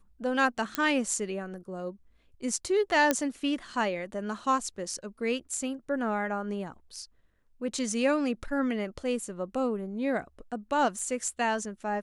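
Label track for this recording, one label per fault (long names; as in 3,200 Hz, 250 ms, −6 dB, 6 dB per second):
0.750000	0.750000	click −11 dBFS
3.110000	3.110000	click −9 dBFS
10.990000	10.990000	drop-out 3.4 ms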